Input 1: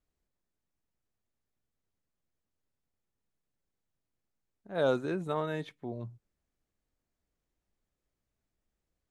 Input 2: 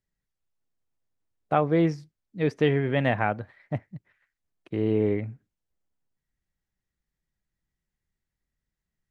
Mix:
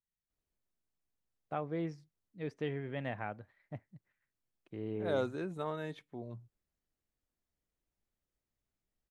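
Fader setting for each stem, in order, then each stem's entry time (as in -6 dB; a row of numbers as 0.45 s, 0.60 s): -5.5 dB, -15.0 dB; 0.30 s, 0.00 s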